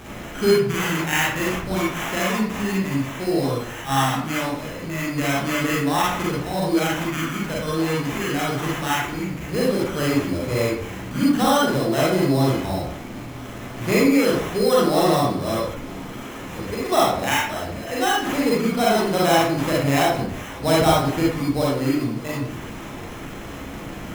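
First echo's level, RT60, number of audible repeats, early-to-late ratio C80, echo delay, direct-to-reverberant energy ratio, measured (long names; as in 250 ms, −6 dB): no echo audible, 0.65 s, no echo audible, 4.5 dB, no echo audible, −6.0 dB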